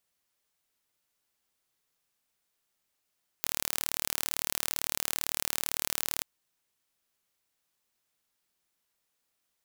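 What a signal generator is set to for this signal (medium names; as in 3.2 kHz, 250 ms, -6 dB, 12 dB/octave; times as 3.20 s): pulse train 37.8 per s, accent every 0, -3 dBFS 2.80 s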